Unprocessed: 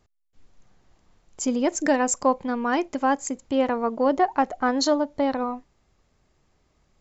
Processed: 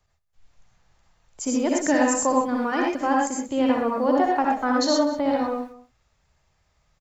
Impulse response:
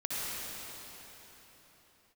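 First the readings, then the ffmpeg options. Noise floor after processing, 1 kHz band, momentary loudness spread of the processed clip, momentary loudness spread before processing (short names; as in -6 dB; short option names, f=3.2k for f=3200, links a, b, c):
-69 dBFS, +1.0 dB, 6 LU, 6 LU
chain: -filter_complex "[0:a]acrossover=split=170|470|2000[a][b][c][d];[b]aeval=exprs='val(0)*gte(abs(val(0)),0.00316)':c=same[e];[a][e][c][d]amix=inputs=4:normalize=0,aecho=1:1:186:0.141[f];[1:a]atrim=start_sample=2205,afade=t=out:st=0.18:d=0.01,atrim=end_sample=8379[g];[f][g]afir=irnorm=-1:irlink=0"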